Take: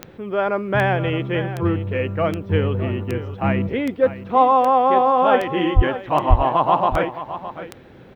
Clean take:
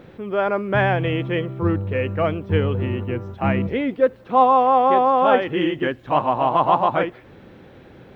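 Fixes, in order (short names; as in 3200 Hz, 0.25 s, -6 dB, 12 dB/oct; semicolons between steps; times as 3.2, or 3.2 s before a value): de-click; 5.75–5.87 HPF 140 Hz 24 dB/oct; 6.29–6.41 HPF 140 Hz 24 dB/oct; inverse comb 0.615 s -13 dB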